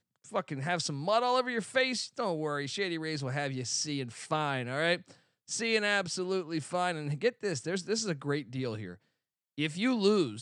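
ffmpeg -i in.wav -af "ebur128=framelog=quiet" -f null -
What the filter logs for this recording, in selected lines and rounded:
Integrated loudness:
  I:         -31.7 LUFS
  Threshold: -42.0 LUFS
Loudness range:
  LRA:         2.4 LU
  Threshold: -52.3 LUFS
  LRA low:   -33.8 LUFS
  LRA high:  -31.4 LUFS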